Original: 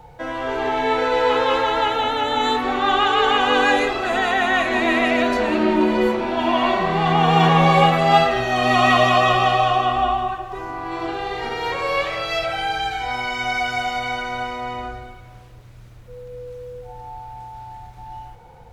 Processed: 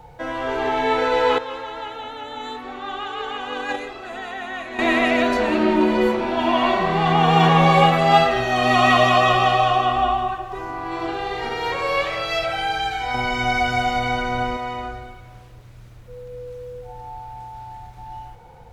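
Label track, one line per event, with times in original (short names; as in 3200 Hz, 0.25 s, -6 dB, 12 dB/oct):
1.380000	4.790000	gate -15 dBFS, range -12 dB
13.140000	14.570000	low shelf 480 Hz +10 dB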